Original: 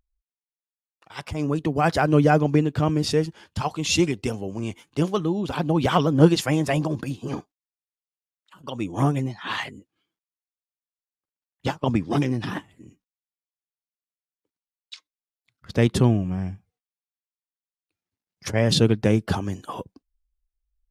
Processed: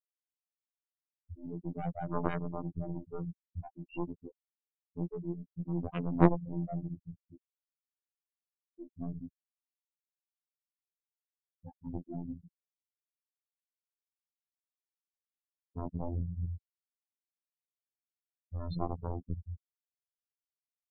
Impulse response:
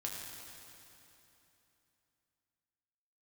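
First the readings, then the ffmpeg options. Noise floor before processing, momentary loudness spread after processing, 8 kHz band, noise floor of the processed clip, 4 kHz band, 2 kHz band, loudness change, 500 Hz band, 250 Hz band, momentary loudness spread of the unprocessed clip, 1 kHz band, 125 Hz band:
under -85 dBFS, 14 LU, under -40 dB, under -85 dBFS, under -30 dB, -21.0 dB, -14.0 dB, -16.5 dB, -14.0 dB, 15 LU, -14.5 dB, -14.5 dB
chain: -filter_complex "[0:a]asplit=2[a][b];[1:a]atrim=start_sample=2205,highshelf=f=2k:g=-7.5[c];[b][c]afir=irnorm=-1:irlink=0,volume=-7dB[d];[a][d]amix=inputs=2:normalize=0,afftfilt=real='re*gte(hypot(re,im),0.631)':imag='im*gte(hypot(re,im),0.631)':win_size=1024:overlap=0.75,aeval=exprs='1*(cos(1*acos(clip(val(0)/1,-1,1)))-cos(1*PI/2))+0.0562*(cos(2*acos(clip(val(0)/1,-1,1)))-cos(2*PI/2))+0.398*(cos(3*acos(clip(val(0)/1,-1,1)))-cos(3*PI/2))+0.0447*(cos(4*acos(clip(val(0)/1,-1,1)))-cos(4*PI/2))':c=same,aresample=11025,asoftclip=type=tanh:threshold=-9dB,aresample=44100,lowshelf=f=250:g=8,afftfilt=real='hypot(re,im)*cos(PI*b)':imag='0':win_size=2048:overlap=0.75"

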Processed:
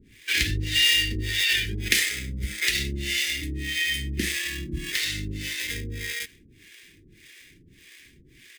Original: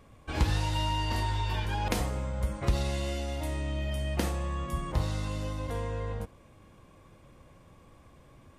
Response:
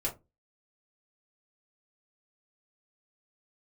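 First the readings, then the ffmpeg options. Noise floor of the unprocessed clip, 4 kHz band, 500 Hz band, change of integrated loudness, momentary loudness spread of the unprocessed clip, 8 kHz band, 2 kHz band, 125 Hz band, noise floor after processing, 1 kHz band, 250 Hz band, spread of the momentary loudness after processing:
-57 dBFS, +15.5 dB, -6.0 dB, +7.5 dB, 5 LU, +14.0 dB, +15.5 dB, -2.5 dB, -55 dBFS, -19.0 dB, +0.5 dB, 11 LU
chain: -filter_complex "[0:a]bass=f=250:g=-8,treble=f=4k:g=-5,asplit=2[a][b];[b]acrusher=samples=31:mix=1:aa=0.000001,volume=-4dB[c];[a][c]amix=inputs=2:normalize=0,acrossover=split=470[d][e];[d]aeval=exprs='val(0)*(1-1/2+1/2*cos(2*PI*1.7*n/s))':c=same[f];[e]aeval=exprs='val(0)*(1-1/2-1/2*cos(2*PI*1.7*n/s))':c=same[g];[f][g]amix=inputs=2:normalize=0,firequalizer=gain_entry='entry(400,0);entry(580,-27);entry(930,-27);entry(1800,15)':delay=0.05:min_phase=1,volume=5.5dB"

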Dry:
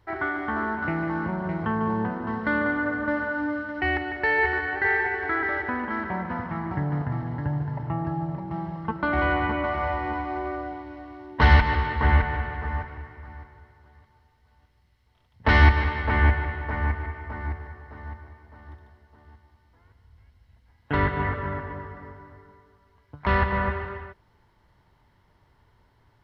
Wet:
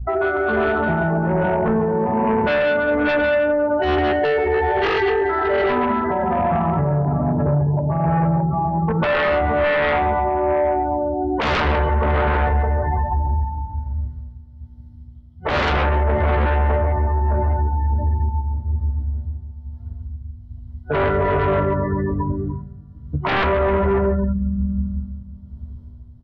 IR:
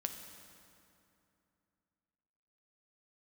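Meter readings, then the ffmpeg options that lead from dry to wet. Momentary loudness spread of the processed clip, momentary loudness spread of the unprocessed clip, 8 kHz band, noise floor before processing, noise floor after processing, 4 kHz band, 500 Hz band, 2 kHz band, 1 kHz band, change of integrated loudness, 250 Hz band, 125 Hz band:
14 LU, 17 LU, n/a, -63 dBFS, -40 dBFS, +6.5 dB, +13.5 dB, +1.5 dB, +7.0 dB, +6.0 dB, +7.5 dB, +6.5 dB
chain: -filter_complex "[0:a]aecho=1:1:139:0.596,asplit=2[a][b];[1:a]atrim=start_sample=2205,lowpass=2.6k,adelay=13[c];[b][c]afir=irnorm=-1:irlink=0,volume=4.5dB[d];[a][d]amix=inputs=2:normalize=0,aeval=exprs='val(0)+0.0141*(sin(2*PI*60*n/s)+sin(2*PI*2*60*n/s)/2+sin(2*PI*3*60*n/s)/3+sin(2*PI*4*60*n/s)/4+sin(2*PI*5*60*n/s)/5)':c=same,afftdn=nr=32:nf=-26,superequalizer=6b=0.501:7b=2.82:8b=3.16:11b=0.355:12b=0.251,tremolo=f=1.2:d=0.52,acrossover=split=180|3000[e][f][g];[e]acompressor=threshold=-19dB:ratio=3[h];[h][f][g]amix=inputs=3:normalize=0,bandreject=f=60:t=h:w=6,bandreject=f=120:t=h:w=6,bandreject=f=180:t=h:w=6,aeval=exprs='0.75*sin(PI/2*3.98*val(0)/0.75)':c=same,highshelf=f=2.2k:g=7,acompressor=threshold=-13dB:ratio=10,alimiter=limit=-17dB:level=0:latency=1:release=329,volume=4dB"

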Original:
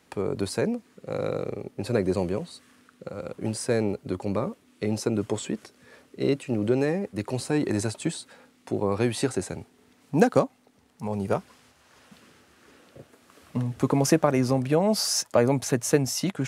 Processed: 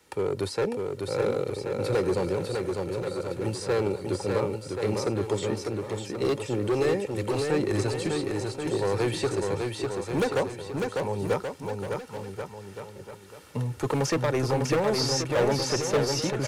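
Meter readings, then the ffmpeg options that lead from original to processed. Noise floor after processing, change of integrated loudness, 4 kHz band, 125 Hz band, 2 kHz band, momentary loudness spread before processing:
-45 dBFS, -1.5 dB, +1.0 dB, -0.5 dB, +1.5 dB, 13 LU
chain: -filter_complex "[0:a]aecho=1:1:2.2:0.54,acrossover=split=190|1700|5500[a][b][c][d];[d]acompressor=threshold=-50dB:ratio=6[e];[a][b][c][e]amix=inputs=4:normalize=0,asoftclip=type=hard:threshold=-20dB,highshelf=f=5k:g=4.5,aecho=1:1:600|1080|1464|1771|2017:0.631|0.398|0.251|0.158|0.1,volume=-1dB"

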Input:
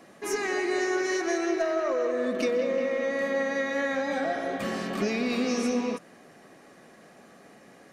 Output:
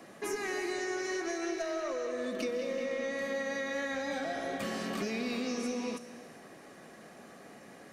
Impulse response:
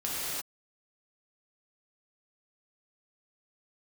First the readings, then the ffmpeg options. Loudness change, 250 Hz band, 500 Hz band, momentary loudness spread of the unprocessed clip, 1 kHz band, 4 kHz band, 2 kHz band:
-7.0 dB, -7.0 dB, -7.5 dB, 4 LU, -7.0 dB, -4.0 dB, -6.0 dB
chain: -filter_complex "[0:a]acrossover=split=140|2800[a][b][c];[a]acompressor=threshold=-53dB:ratio=4[d];[b]acompressor=threshold=-35dB:ratio=4[e];[c]acompressor=threshold=-45dB:ratio=4[f];[d][e][f]amix=inputs=3:normalize=0,asplit=2[g][h];[1:a]atrim=start_sample=2205,asetrate=37044,aresample=44100,highshelf=f=6.1k:g=11.5[i];[h][i]afir=irnorm=-1:irlink=0,volume=-23.5dB[j];[g][j]amix=inputs=2:normalize=0"

